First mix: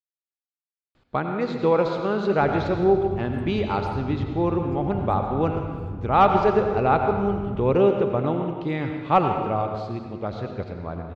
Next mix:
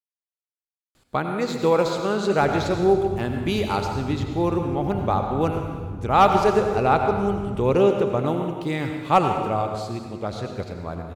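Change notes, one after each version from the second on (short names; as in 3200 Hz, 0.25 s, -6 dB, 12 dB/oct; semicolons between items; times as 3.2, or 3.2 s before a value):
speech: remove air absorption 230 m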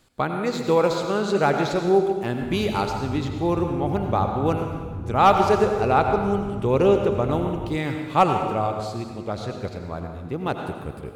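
speech: entry -0.95 s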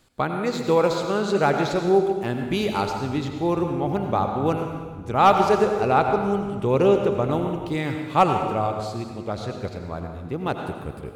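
background -10.0 dB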